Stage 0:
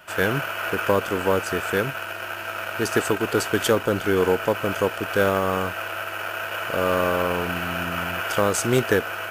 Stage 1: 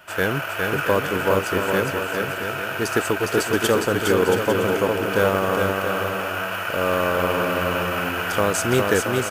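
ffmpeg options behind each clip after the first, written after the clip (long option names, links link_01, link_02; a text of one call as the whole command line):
ffmpeg -i in.wav -af "aecho=1:1:410|676.5|849.7|962.3|1036:0.631|0.398|0.251|0.158|0.1" out.wav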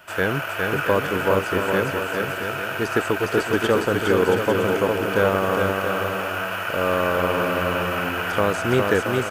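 ffmpeg -i in.wav -filter_complex "[0:a]acrossover=split=3400[link_01][link_02];[link_02]acompressor=threshold=-37dB:ratio=4:attack=1:release=60[link_03];[link_01][link_03]amix=inputs=2:normalize=0" out.wav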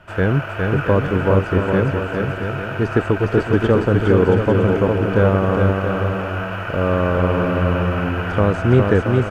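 ffmpeg -i in.wav -af "aemphasis=mode=reproduction:type=riaa" out.wav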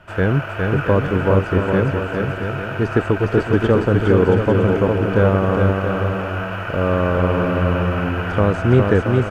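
ffmpeg -i in.wav -af anull out.wav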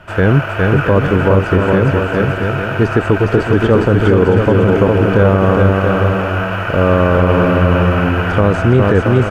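ffmpeg -i in.wav -af "alimiter=level_in=8dB:limit=-1dB:release=50:level=0:latency=1,volume=-1dB" out.wav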